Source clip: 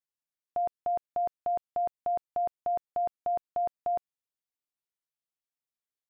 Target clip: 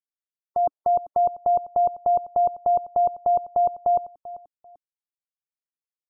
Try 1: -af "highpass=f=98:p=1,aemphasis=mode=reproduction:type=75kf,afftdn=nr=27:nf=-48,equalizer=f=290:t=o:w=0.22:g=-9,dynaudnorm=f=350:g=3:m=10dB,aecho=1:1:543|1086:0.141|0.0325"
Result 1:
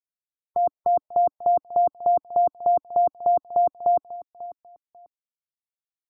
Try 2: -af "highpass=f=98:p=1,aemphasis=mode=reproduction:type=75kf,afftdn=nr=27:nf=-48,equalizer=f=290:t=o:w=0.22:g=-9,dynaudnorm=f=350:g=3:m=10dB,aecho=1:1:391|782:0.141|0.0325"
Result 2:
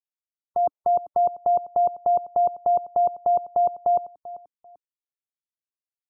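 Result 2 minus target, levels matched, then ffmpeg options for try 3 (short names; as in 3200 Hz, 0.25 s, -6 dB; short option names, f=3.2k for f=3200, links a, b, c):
125 Hz band -3.0 dB
-af "aemphasis=mode=reproduction:type=75kf,afftdn=nr=27:nf=-48,equalizer=f=290:t=o:w=0.22:g=-9,dynaudnorm=f=350:g=3:m=10dB,aecho=1:1:391|782:0.141|0.0325"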